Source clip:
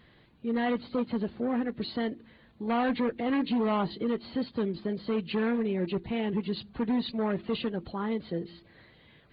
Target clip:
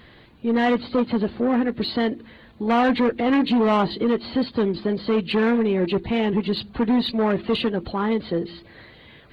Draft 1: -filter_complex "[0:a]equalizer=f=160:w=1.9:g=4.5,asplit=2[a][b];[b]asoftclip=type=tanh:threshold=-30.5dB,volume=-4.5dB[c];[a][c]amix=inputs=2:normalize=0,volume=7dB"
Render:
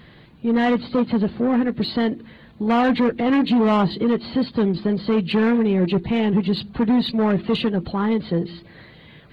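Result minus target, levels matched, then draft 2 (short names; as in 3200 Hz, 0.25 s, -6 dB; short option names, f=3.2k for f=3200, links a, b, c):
125 Hz band +3.5 dB
-filter_complex "[0:a]equalizer=f=160:w=1.9:g=-4,asplit=2[a][b];[b]asoftclip=type=tanh:threshold=-30.5dB,volume=-4.5dB[c];[a][c]amix=inputs=2:normalize=0,volume=7dB"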